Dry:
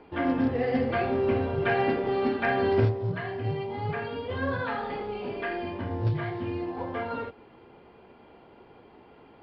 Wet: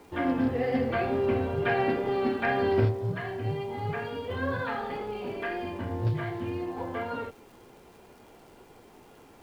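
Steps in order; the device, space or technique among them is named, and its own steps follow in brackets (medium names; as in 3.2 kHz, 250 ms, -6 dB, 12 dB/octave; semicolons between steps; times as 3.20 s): vinyl LP (wow and flutter 21 cents; crackle; pink noise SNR 32 dB); trim -1 dB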